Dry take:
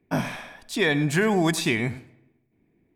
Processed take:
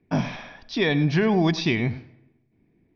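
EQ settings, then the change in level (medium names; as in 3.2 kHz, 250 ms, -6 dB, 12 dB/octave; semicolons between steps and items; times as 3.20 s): steep low-pass 5.8 kHz 96 dB/octave; dynamic bell 1.5 kHz, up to -5 dB, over -41 dBFS, Q 2.1; tone controls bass +4 dB, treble +1 dB; 0.0 dB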